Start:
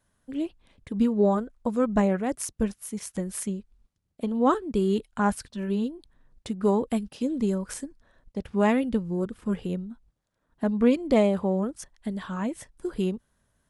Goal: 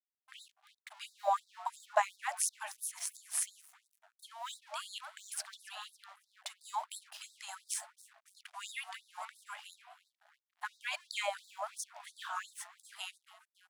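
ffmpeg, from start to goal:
ffmpeg -i in.wav -filter_complex "[0:a]asplit=5[link_01][link_02][link_03][link_04][link_05];[link_02]adelay=279,afreqshift=120,volume=-20dB[link_06];[link_03]adelay=558,afreqshift=240,volume=-25dB[link_07];[link_04]adelay=837,afreqshift=360,volume=-30.1dB[link_08];[link_05]adelay=1116,afreqshift=480,volume=-35.1dB[link_09];[link_01][link_06][link_07][link_08][link_09]amix=inputs=5:normalize=0,aeval=exprs='sgn(val(0))*max(abs(val(0))-0.00266,0)':channel_layout=same,afftfilt=real='re*gte(b*sr/1024,600*pow(3700/600,0.5+0.5*sin(2*PI*2.9*pts/sr)))':imag='im*gte(b*sr/1024,600*pow(3700/600,0.5+0.5*sin(2*PI*2.9*pts/sr)))':win_size=1024:overlap=0.75,volume=1.5dB" out.wav

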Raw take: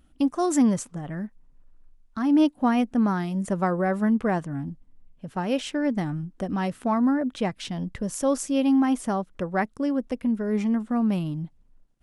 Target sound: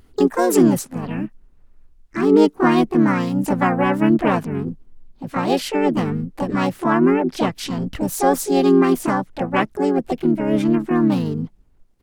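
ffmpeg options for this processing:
ffmpeg -i in.wav -filter_complex "[0:a]acontrast=61,asplit=4[link_01][link_02][link_03][link_04];[link_02]asetrate=29433,aresample=44100,atempo=1.49831,volume=-10dB[link_05];[link_03]asetrate=58866,aresample=44100,atempo=0.749154,volume=-7dB[link_06];[link_04]asetrate=66075,aresample=44100,atempo=0.66742,volume=-2dB[link_07];[link_01][link_05][link_06][link_07]amix=inputs=4:normalize=0,volume=-2.5dB" out.wav

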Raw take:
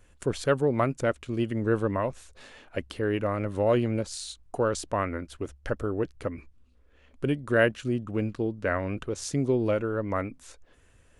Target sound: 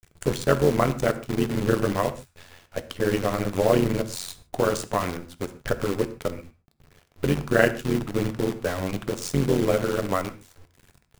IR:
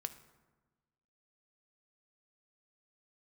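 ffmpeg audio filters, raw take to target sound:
-filter_complex "[0:a]tremolo=f=89:d=0.889,acrusher=bits=7:dc=4:mix=0:aa=0.000001[link_01];[1:a]atrim=start_sample=2205,afade=type=out:start_time=0.2:duration=0.01,atrim=end_sample=9261[link_02];[link_01][link_02]afir=irnorm=-1:irlink=0,volume=9dB"

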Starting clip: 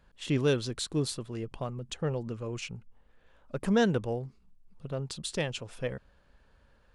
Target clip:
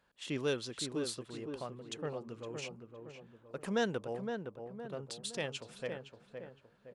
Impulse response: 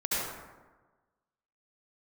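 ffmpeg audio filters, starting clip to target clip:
-filter_complex "[0:a]highpass=frequency=360:poles=1,asplit=2[link_01][link_02];[link_02]adelay=514,lowpass=frequency=1500:poles=1,volume=-6dB,asplit=2[link_03][link_04];[link_04]adelay=514,lowpass=frequency=1500:poles=1,volume=0.47,asplit=2[link_05][link_06];[link_06]adelay=514,lowpass=frequency=1500:poles=1,volume=0.47,asplit=2[link_07][link_08];[link_08]adelay=514,lowpass=frequency=1500:poles=1,volume=0.47,asplit=2[link_09][link_10];[link_10]adelay=514,lowpass=frequency=1500:poles=1,volume=0.47,asplit=2[link_11][link_12];[link_12]adelay=514,lowpass=frequency=1500:poles=1,volume=0.47[link_13];[link_03][link_05][link_07][link_09][link_11][link_13]amix=inputs=6:normalize=0[link_14];[link_01][link_14]amix=inputs=2:normalize=0,volume=-4.5dB"

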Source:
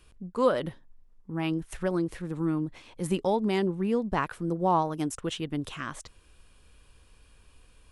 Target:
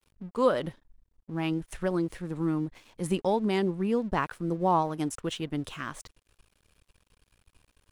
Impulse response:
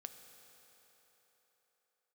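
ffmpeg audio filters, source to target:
-af "aeval=exprs='sgn(val(0))*max(abs(val(0))-0.00188,0)':channel_layout=same"

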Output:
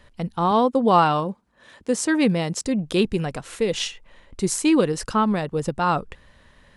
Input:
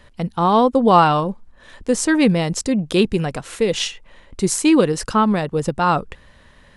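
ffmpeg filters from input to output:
ffmpeg -i in.wav -filter_complex "[0:a]asettb=1/sr,asplit=3[link_01][link_02][link_03];[link_01]atrim=end=0.514[link_04];[link_02]atrim=start=0.51:end=2.65,asetpts=PTS-STARTPTS,afade=type=in:duration=0.004:curve=qsin,afade=type=out:start_time=2.136:duration=0.004:curve=qsin,highpass=110[link_05];[link_03]atrim=start=2.646[link_06];[link_04][link_05]acrossfade=duration=0.004:curve1=hsin:curve2=qsin[link_07];[link_07][link_06]acrossfade=duration=0.004:curve1=qsin:curve2=hsin,volume=-4dB" out.wav

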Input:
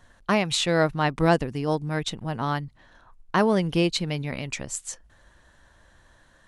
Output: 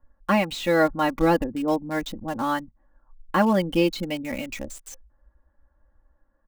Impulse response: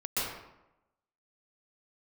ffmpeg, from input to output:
-filter_complex "[0:a]afftdn=noise_reduction=14:noise_floor=-39,deesser=0.85,aecho=1:1:3.6:0.85,acrossover=split=1500[link_01][link_02];[link_02]acrusher=bits=6:mix=0:aa=0.000001[link_03];[link_01][link_03]amix=inputs=2:normalize=0"

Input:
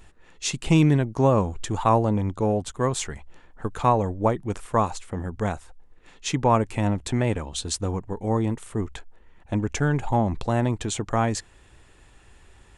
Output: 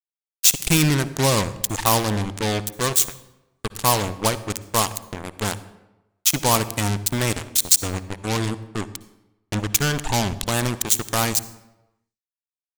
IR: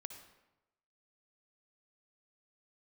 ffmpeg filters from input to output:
-filter_complex "[0:a]acrusher=bits=3:mix=0:aa=0.5,crystalizer=i=9:c=0,asplit=2[link_01][link_02];[1:a]atrim=start_sample=2205,lowshelf=frequency=400:gain=10.5[link_03];[link_02][link_03]afir=irnorm=-1:irlink=0,volume=-1.5dB[link_04];[link_01][link_04]amix=inputs=2:normalize=0,volume=-8.5dB"

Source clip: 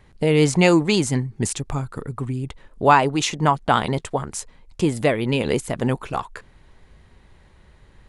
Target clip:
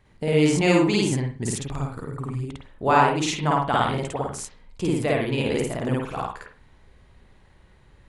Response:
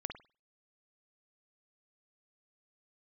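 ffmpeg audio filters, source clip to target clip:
-filter_complex "[0:a]asplit=2[link_01][link_02];[1:a]atrim=start_sample=2205,adelay=53[link_03];[link_02][link_03]afir=irnorm=-1:irlink=0,volume=4.5dB[link_04];[link_01][link_04]amix=inputs=2:normalize=0,volume=-7.5dB"

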